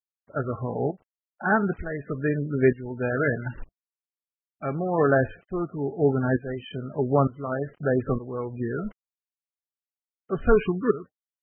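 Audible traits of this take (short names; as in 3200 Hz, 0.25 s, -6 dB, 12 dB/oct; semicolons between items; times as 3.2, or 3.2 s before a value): a quantiser's noise floor 8-bit, dither none; tremolo saw up 1.1 Hz, depth 85%; MP3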